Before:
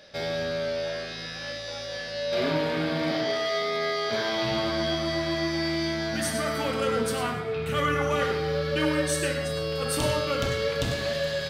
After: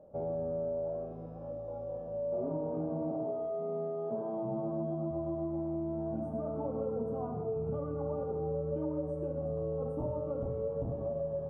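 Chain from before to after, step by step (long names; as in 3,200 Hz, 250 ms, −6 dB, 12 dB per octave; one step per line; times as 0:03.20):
0:03.58–0:05.11: low shelf with overshoot 120 Hz −8.5 dB, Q 3
downward compressor, threshold −29 dBFS, peak gain reduction 8.5 dB
inverse Chebyshev low-pass filter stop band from 1,700 Hz, stop band 40 dB
level −1.5 dB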